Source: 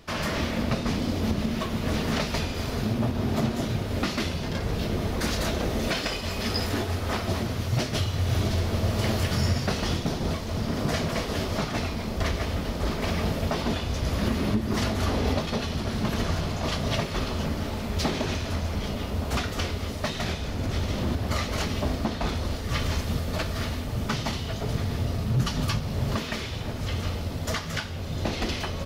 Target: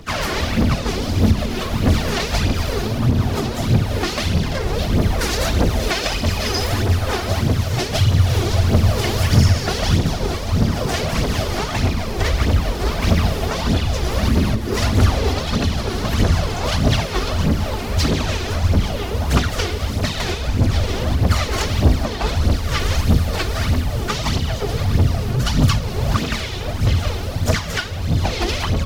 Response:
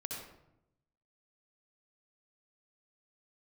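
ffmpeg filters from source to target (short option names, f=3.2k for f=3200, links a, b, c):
-filter_complex "[0:a]acrossover=split=150|3000[a][b][c];[b]acompressor=threshold=-26dB:ratio=10[d];[a][d][c]amix=inputs=3:normalize=0,aphaser=in_gain=1:out_gain=1:delay=2.9:decay=0.62:speed=1.6:type=triangular,asplit=3[e][f][g];[f]asetrate=52444,aresample=44100,atempo=0.840896,volume=-10dB[h];[g]asetrate=55563,aresample=44100,atempo=0.793701,volume=-14dB[i];[e][h][i]amix=inputs=3:normalize=0,volume=5.5dB"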